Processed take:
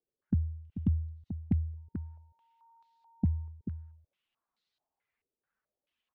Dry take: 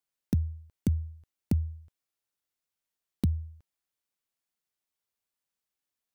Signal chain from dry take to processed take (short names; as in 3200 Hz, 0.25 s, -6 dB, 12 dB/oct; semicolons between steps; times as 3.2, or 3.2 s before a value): spectral contrast raised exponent 1.6; in parallel at +0.5 dB: compressor, threshold -35 dBFS, peak gain reduction 12.5 dB; 1.76–3.51 on the sum: whine 920 Hz -66 dBFS; echo 0.438 s -10.5 dB; stepped low-pass 4.6 Hz 430–4000 Hz; gain -4 dB